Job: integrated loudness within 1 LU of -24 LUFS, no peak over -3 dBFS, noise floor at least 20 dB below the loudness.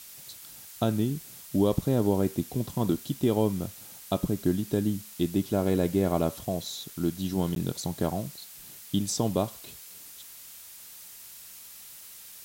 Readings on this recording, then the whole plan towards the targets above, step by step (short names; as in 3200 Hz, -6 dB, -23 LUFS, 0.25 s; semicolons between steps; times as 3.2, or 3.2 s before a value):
dropouts 1; longest dropout 12 ms; noise floor -47 dBFS; noise floor target -49 dBFS; loudness -29.0 LUFS; peak -12.0 dBFS; loudness target -24.0 LUFS
-> interpolate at 7.55, 12 ms; noise print and reduce 6 dB; gain +5 dB